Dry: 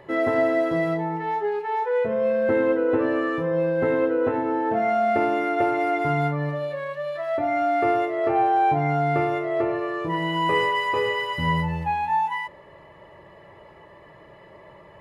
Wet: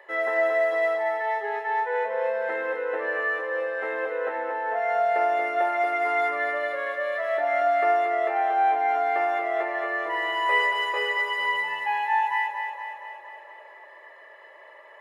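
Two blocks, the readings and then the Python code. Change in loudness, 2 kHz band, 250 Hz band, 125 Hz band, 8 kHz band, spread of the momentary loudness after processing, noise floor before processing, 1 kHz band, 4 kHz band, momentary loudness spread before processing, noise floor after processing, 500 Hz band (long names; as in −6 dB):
−1.5 dB, +3.5 dB, −18.0 dB, below −40 dB, can't be measured, 7 LU, −49 dBFS, −0.5 dB, −0.5 dB, 6 LU, −49 dBFS, −3.0 dB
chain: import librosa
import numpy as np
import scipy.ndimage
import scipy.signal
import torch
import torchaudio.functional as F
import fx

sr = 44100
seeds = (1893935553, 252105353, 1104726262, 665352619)

y = fx.notch(x, sr, hz=4500.0, q=10.0)
y = fx.rider(y, sr, range_db=10, speed_s=2.0)
y = scipy.signal.sosfilt(scipy.signal.butter(4, 510.0, 'highpass', fs=sr, output='sos'), y)
y = fx.peak_eq(y, sr, hz=1800.0, db=10.0, octaves=0.28)
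y = fx.echo_feedback(y, sr, ms=232, feedback_pct=60, wet_db=-6.5)
y = F.gain(torch.from_numpy(y), -3.0).numpy()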